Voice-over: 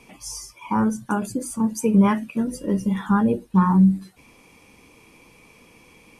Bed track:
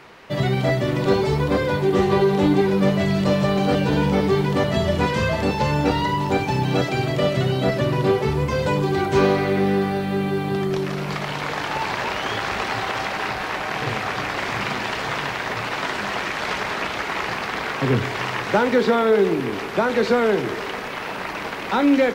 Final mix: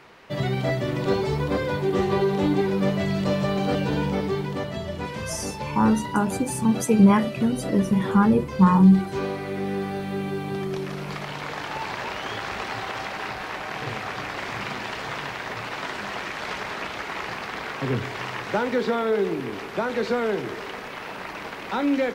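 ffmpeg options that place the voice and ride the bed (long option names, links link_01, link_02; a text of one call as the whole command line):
ffmpeg -i stem1.wav -i stem2.wav -filter_complex "[0:a]adelay=5050,volume=1dB[link_01];[1:a]volume=0.5dB,afade=type=out:start_time=3.84:duration=0.97:silence=0.473151,afade=type=in:start_time=9.39:duration=0.63:silence=0.562341[link_02];[link_01][link_02]amix=inputs=2:normalize=0" out.wav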